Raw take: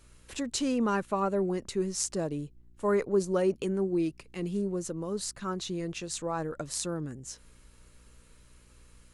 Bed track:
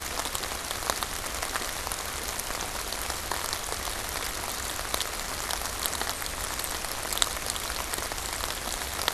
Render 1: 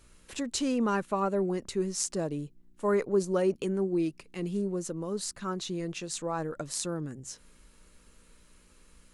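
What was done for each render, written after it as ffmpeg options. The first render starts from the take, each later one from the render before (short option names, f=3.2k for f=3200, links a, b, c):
-af "bandreject=f=60:t=h:w=4,bandreject=f=120:t=h:w=4"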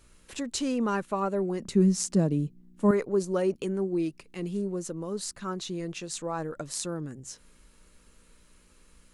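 -filter_complex "[0:a]asettb=1/sr,asplit=3[a][b][c];[a]atrim=end=1.604[d];[b]atrim=start=1.6:end=2.91,asetpts=PTS-STARTPTS,afade=t=in:d=0.004:c=qsin,afade=t=out:st=1.306:d=0.004:c=qsin,equalizer=f=190:t=o:w=1.2:g=14[e];[c]atrim=start=2.906[f];[d][e]acrossfade=d=0.004:c1=hsin:c2=qsin[g];[g][f]acrossfade=d=0.004:c1=qsin:c2=hsin"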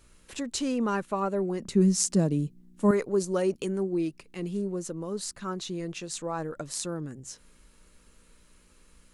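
-filter_complex "[0:a]asettb=1/sr,asplit=3[a][b][c];[a]atrim=end=1.814[d];[b]atrim=start=1.81:end=3.83,asetpts=PTS-STARTPTS,afade=t=in:d=0.004:c=qsin,afade=t=out:st=2.016:d=0.004:c=qsin,equalizer=f=8.9k:w=0.36:g=5[e];[c]atrim=start=3.826[f];[d][e]acrossfade=d=0.004:c1=hsin:c2=qsin[g];[g][f]acrossfade=d=0.004:c1=qsin:c2=hsin"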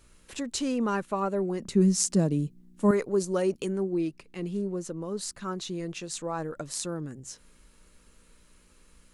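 -filter_complex "[0:a]asettb=1/sr,asplit=3[a][b][c];[a]atrim=end=3.734[d];[b]atrim=start=3.73:end=5.19,asetpts=PTS-STARTPTS,afade=t=in:d=0.004:c=qsin,afade=t=out:st=1.456:d=0.004:c=qsin,highshelf=f=6.7k:g=-5.5[e];[c]atrim=start=5.186[f];[d][e]acrossfade=d=0.004:c1=hsin:c2=qsin[g];[g][f]acrossfade=d=0.004:c1=qsin:c2=hsin"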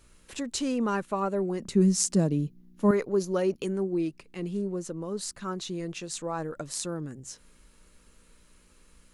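-filter_complex "[0:a]asettb=1/sr,asplit=3[a][b][c];[a]atrim=end=2.284[d];[b]atrim=start=2.28:end=3.65,asetpts=PTS-STARTPTS,afade=t=in:d=0.004:c=qsin,afade=t=out:st=1.366:d=0.004:c=qsin,equalizer=f=8.3k:t=o:w=0.27:g=-15[e];[c]atrim=start=3.646[f];[d][e]acrossfade=d=0.004:c1=hsin:c2=qsin[g];[g][f]acrossfade=d=0.004:c1=qsin:c2=hsin"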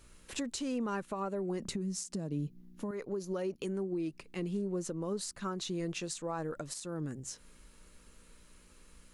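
-af "acompressor=threshold=-30dB:ratio=12,alimiter=level_in=3dB:limit=-24dB:level=0:latency=1:release=212,volume=-3dB"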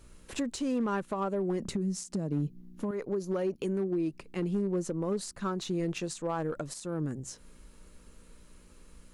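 -filter_complex "[0:a]asplit=2[a][b];[b]adynamicsmooth=sensitivity=7:basefreq=1.3k,volume=-2dB[c];[a][c]amix=inputs=2:normalize=0,asoftclip=type=hard:threshold=-24dB"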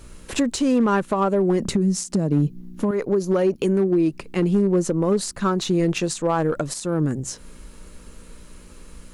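-af "volume=11.5dB"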